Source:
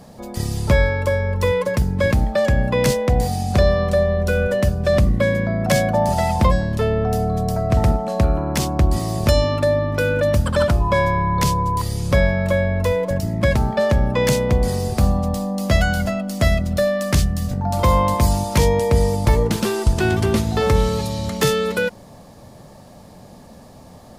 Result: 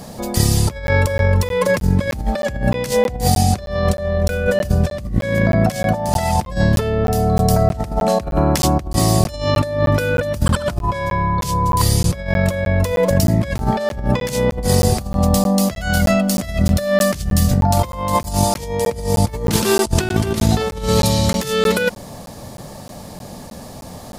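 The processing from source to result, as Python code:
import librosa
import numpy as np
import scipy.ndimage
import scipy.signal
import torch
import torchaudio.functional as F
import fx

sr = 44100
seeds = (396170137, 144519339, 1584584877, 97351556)

y = fx.high_shelf(x, sr, hz=3700.0, db=6.0)
y = fx.over_compress(y, sr, threshold_db=-21.0, ratio=-0.5)
y = fx.buffer_crackle(y, sr, first_s=0.87, period_s=0.31, block=512, kind='zero')
y = y * 10.0 ** (4.5 / 20.0)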